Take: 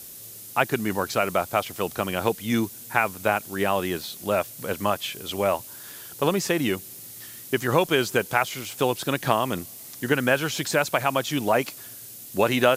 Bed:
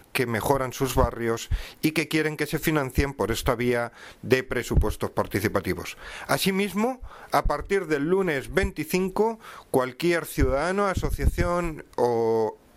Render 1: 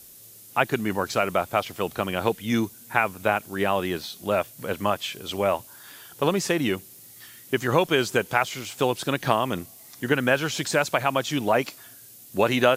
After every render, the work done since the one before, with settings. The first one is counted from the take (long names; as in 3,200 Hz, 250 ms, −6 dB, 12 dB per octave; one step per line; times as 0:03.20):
noise reduction from a noise print 6 dB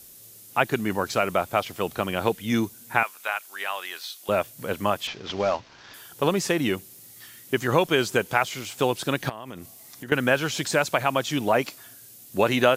0:03.03–0:04.29: high-pass filter 1,200 Hz
0:05.07–0:05.94: variable-slope delta modulation 32 kbit/s
0:09.29–0:10.12: downward compressor 5 to 1, threshold −34 dBFS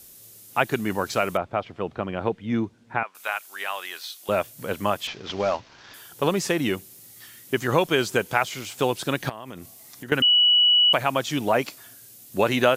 0:01.37–0:03.15: head-to-tape spacing loss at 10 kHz 32 dB
0:10.22–0:10.93: beep over 2,940 Hz −14 dBFS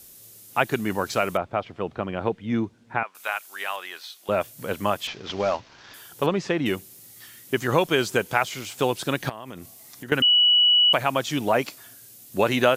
0:03.76–0:04.41: high-shelf EQ 4,200 Hz −7.5 dB
0:06.26–0:06.66: high-frequency loss of the air 160 metres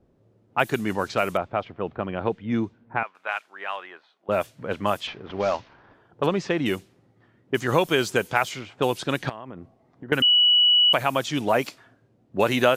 low-pass that shuts in the quiet parts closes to 600 Hz, open at −19.5 dBFS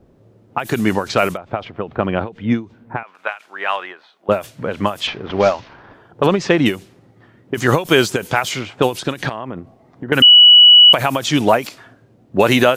boost into a limiter +11 dB
every ending faded ahead of time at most 200 dB per second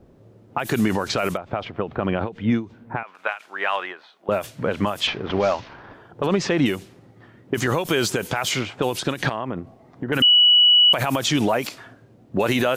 brickwall limiter −10.5 dBFS, peak gain reduction 9.5 dB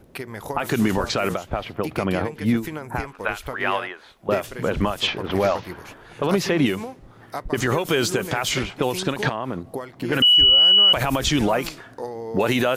mix in bed −9 dB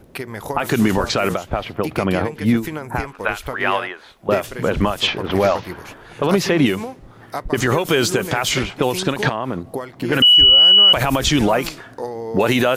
level +4 dB